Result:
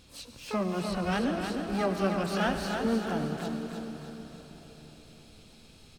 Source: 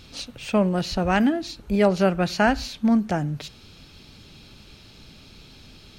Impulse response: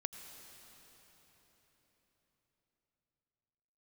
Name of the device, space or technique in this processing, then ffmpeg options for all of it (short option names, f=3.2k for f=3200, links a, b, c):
shimmer-style reverb: -filter_complex "[0:a]asettb=1/sr,asplit=3[a][b][c];[a]atrim=end=0.734[d];[b]atrim=start=0.73:end=1.3,asetpts=PTS-STARTPTS,afade=t=in:d=0.004:c=qsin,afade=t=out:st=0.566:d=0.004:c=qsin,lowpass=6.1k[e];[c]atrim=start=1.296[f];[d][e]acrossfade=d=0.004:c1=hsin:c2=qsin[g];[g][f]acrossfade=d=0.004:c1=qsin:c2=hsin,asplit=2[h][i];[i]asetrate=88200,aresample=44100,atempo=0.5,volume=-6dB[j];[h][j]amix=inputs=2:normalize=0[k];[1:a]atrim=start_sample=2205[l];[k][l]afir=irnorm=-1:irlink=0,aecho=1:1:309|618|927|1236|1545:0.501|0.21|0.0884|0.0371|0.0156,volume=-8.5dB"